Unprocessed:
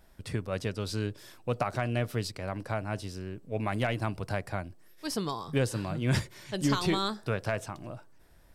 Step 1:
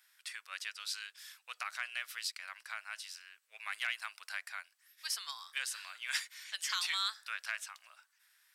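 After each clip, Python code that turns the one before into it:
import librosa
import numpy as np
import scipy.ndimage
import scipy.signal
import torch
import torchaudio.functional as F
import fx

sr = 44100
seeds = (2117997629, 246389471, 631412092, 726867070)

y = scipy.signal.sosfilt(scipy.signal.butter(4, 1500.0, 'highpass', fs=sr, output='sos'), x)
y = y * 10.0 ** (1.0 / 20.0)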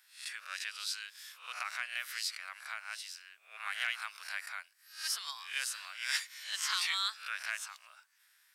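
y = fx.spec_swells(x, sr, rise_s=0.41)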